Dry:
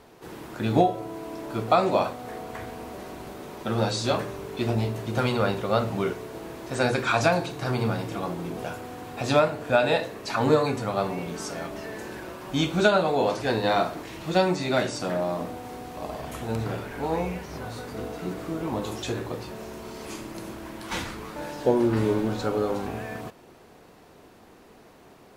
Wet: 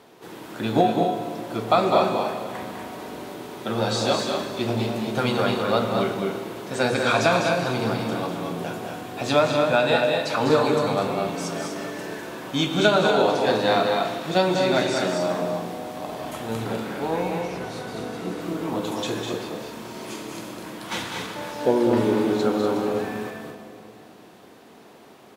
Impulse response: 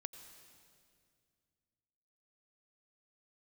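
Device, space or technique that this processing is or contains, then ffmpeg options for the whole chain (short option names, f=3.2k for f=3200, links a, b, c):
stadium PA: -filter_complex "[0:a]highpass=140,equalizer=f=3.4k:t=o:w=0.39:g=3.5,aecho=1:1:201.2|242:0.501|0.447[a];[1:a]atrim=start_sample=2205[b];[a][b]afir=irnorm=-1:irlink=0,asettb=1/sr,asplit=3[c][d][e];[c]atrim=end=17.414[f];[d]atrim=start=17.41:end=18.41,asetpts=PTS-STARTPTS,afade=t=in:d=0.004:c=qsin,afade=t=out:st=0.996:d=0.004:c=qsin,lowpass=12k[g];[e]atrim=start=18.406[h];[f][g]acrossfade=d=0.004:c1=hsin:c2=qsin[i];[i][h]acrossfade=d=0.004:c1=qsin:c2=hsin,volume=5.5dB"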